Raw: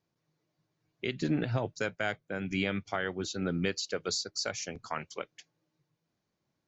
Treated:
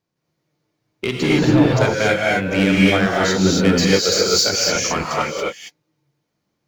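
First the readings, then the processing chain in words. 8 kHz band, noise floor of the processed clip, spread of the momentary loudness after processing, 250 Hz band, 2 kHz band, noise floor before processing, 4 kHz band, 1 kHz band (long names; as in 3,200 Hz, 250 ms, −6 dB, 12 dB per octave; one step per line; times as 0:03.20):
can't be measured, −75 dBFS, 8 LU, +18.0 dB, +16.0 dB, −83 dBFS, +17.5 dB, +17.0 dB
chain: leveller curve on the samples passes 2
reverb whose tail is shaped and stops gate 300 ms rising, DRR −5 dB
level +6 dB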